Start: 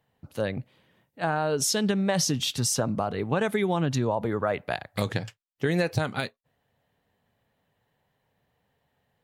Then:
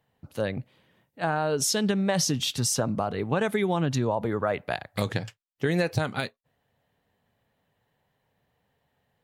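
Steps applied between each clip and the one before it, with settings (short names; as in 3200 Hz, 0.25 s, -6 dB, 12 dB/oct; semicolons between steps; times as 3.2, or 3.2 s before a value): nothing audible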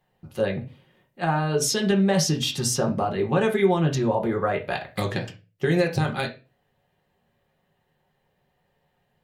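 reverb RT60 0.30 s, pre-delay 5 ms, DRR 0.5 dB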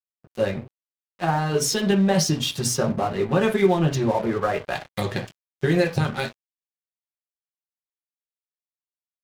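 bin magnitudes rounded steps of 15 dB; crossover distortion -38.5 dBFS; gain +2.5 dB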